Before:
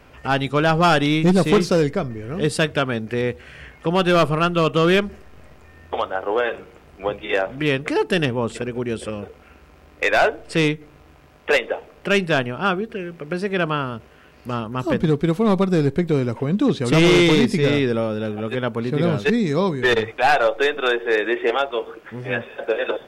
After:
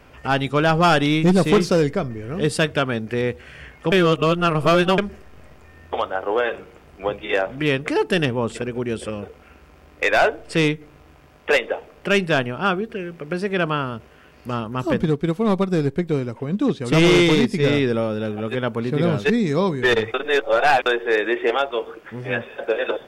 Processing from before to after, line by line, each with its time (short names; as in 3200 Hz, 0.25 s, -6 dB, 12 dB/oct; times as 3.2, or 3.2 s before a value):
3.92–4.98 reverse
15.04–17.6 upward expander, over -26 dBFS
20.14–20.86 reverse
whole clip: notch 4000 Hz, Q 27